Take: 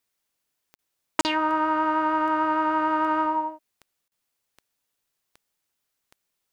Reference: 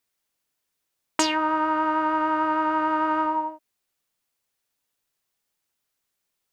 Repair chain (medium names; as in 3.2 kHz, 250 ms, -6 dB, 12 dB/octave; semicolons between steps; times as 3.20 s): de-click; interpolate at 0.75/1.21/4.08 s, 39 ms